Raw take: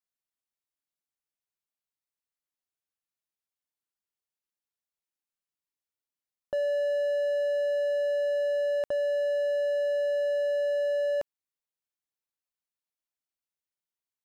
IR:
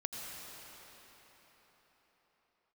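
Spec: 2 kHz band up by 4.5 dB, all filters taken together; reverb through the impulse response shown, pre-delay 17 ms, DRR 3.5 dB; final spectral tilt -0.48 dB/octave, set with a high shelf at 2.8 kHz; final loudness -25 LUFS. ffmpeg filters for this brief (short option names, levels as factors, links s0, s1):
-filter_complex "[0:a]equalizer=f=2000:t=o:g=3.5,highshelf=f=2800:g=5.5,asplit=2[s0][s1];[1:a]atrim=start_sample=2205,adelay=17[s2];[s1][s2]afir=irnorm=-1:irlink=0,volume=0.562[s3];[s0][s3]amix=inputs=2:normalize=0,volume=0.944"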